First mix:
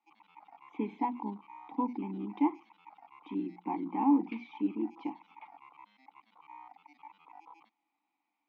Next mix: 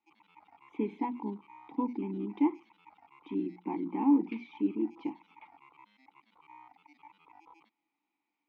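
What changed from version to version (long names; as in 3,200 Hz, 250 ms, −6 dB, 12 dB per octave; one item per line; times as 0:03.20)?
master: remove loudspeaker in its box 160–7,700 Hz, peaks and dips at 390 Hz −7 dB, 750 Hz +7 dB, 1,100 Hz +4 dB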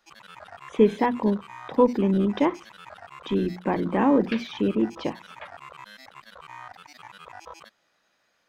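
master: remove formant filter u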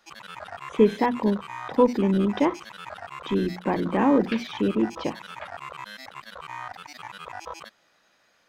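background +5.5 dB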